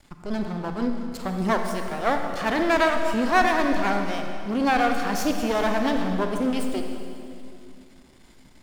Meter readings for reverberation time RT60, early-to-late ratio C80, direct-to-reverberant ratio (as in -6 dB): 2.6 s, 5.5 dB, 4.0 dB